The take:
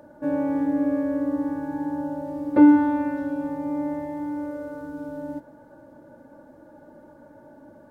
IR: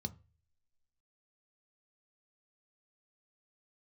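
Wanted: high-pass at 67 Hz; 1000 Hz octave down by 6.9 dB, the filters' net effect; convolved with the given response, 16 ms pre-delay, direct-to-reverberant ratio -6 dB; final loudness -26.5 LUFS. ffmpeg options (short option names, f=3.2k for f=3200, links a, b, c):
-filter_complex "[0:a]highpass=67,equalizer=f=1k:t=o:g=-8,asplit=2[a][b];[1:a]atrim=start_sample=2205,adelay=16[c];[b][c]afir=irnorm=-1:irlink=0,volume=8dB[d];[a][d]amix=inputs=2:normalize=0,volume=-15.5dB"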